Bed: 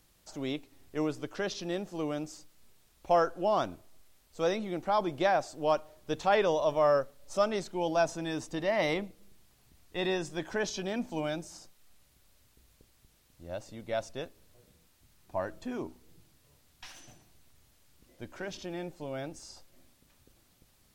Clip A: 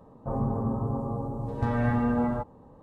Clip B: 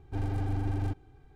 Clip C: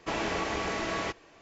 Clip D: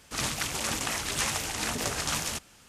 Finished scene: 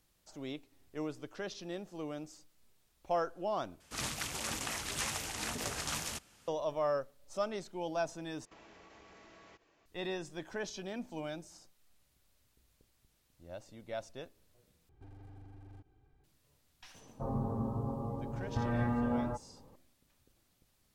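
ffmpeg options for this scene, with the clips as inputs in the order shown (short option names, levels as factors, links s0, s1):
-filter_complex "[0:a]volume=0.422[s0];[4:a]acontrast=69[s1];[3:a]acompressor=threshold=0.00891:ratio=6:attack=3.2:release=140:knee=1:detection=peak[s2];[2:a]acompressor=threshold=0.0126:ratio=6:attack=3.2:release=140:knee=1:detection=peak[s3];[s0]asplit=4[s4][s5][s6][s7];[s4]atrim=end=3.804[s8];[s1]atrim=end=2.68,asetpts=PTS-STARTPTS,volume=0.2[s9];[s5]atrim=start=6.476:end=8.454[s10];[s2]atrim=end=1.41,asetpts=PTS-STARTPTS,volume=0.2[s11];[s6]atrim=start=9.856:end=14.894[s12];[s3]atrim=end=1.35,asetpts=PTS-STARTPTS,volume=0.266[s13];[s7]atrim=start=16.236[s14];[1:a]atrim=end=2.82,asetpts=PTS-STARTPTS,volume=0.447,afade=t=in:d=0.004:c=hsin,afade=t=out:st=2.816:d=0.004:c=hsin,adelay=16940[s15];[s8][s9]acrossfade=d=0.004:c1=hsin:c2=hsin[s16];[s16][s10]acrossfade=d=0.004:c1=hsin:c2=hsin[s17];[s17][s11]acrossfade=d=0.004:c1=hsin:c2=hsin[s18];[s18][s12]acrossfade=d=0.004:c1=hsin:c2=hsin[s19];[s19][s13]acrossfade=d=0.004:c1=hsin:c2=hsin[s20];[s20][s14]acrossfade=d=0.004:c1=hsin:c2=hsin[s21];[s21][s15]amix=inputs=2:normalize=0"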